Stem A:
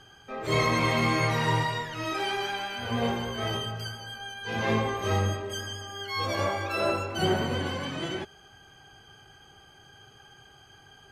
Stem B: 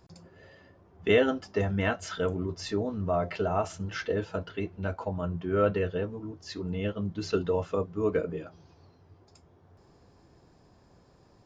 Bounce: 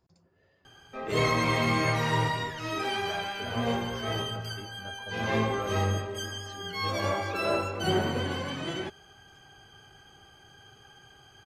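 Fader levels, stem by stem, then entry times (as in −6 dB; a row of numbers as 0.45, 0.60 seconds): −1.0, −13.5 decibels; 0.65, 0.00 seconds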